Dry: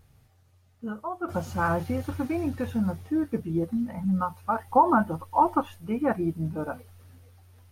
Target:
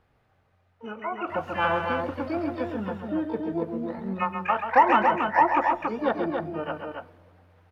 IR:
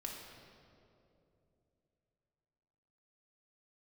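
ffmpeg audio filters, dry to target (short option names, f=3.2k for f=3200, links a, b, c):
-filter_complex "[0:a]acrossover=split=320 2500:gain=0.224 1 0.0708[a][b][c];[a][b][c]amix=inputs=3:normalize=0,acontrast=75,asplit=2[d][e];[e]asetrate=88200,aresample=44100,atempo=0.5,volume=-10dB[f];[d][f]amix=inputs=2:normalize=0,aecho=1:1:134.1|279.9:0.447|0.562,asplit=2[g][h];[1:a]atrim=start_sample=2205,asetrate=66150,aresample=44100[i];[h][i]afir=irnorm=-1:irlink=0,volume=-14dB[j];[g][j]amix=inputs=2:normalize=0,volume=-5.5dB"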